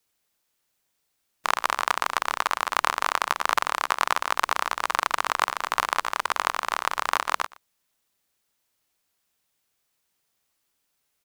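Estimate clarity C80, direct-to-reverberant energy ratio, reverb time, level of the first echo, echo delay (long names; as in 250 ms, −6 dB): no reverb audible, no reverb audible, no reverb audible, −22.0 dB, 119 ms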